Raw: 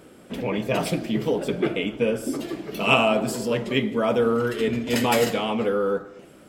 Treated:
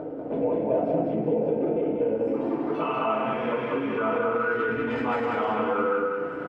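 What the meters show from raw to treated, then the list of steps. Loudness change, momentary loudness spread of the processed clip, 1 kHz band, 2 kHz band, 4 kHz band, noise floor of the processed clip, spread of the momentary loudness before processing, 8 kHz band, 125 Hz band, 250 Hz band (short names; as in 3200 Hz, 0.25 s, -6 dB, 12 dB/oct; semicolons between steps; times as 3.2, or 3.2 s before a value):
-2.5 dB, 3 LU, +0.5 dB, -3.5 dB, -16.0 dB, -33 dBFS, 8 LU, under -30 dB, -6.5 dB, -3.0 dB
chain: rattling part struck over -30 dBFS, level -24 dBFS; high shelf 9300 Hz -3.5 dB; spectral repair 3.11–4.04, 1600–9300 Hz after; notches 60/120/180/240/300 Hz; FDN reverb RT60 0.46 s, low-frequency decay 1.3×, high-frequency decay 0.8×, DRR -6 dB; limiter -9 dBFS, peak gain reduction 10 dB; upward compressor, threshold -35 dBFS; tilt +2 dB/oct; compressor 5:1, threshold -32 dBFS, peak gain reduction 16.5 dB; low-pass sweep 620 Hz -> 1300 Hz, 1.81–3.01; feedback echo 0.193 s, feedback 36%, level -3 dB; gain +4 dB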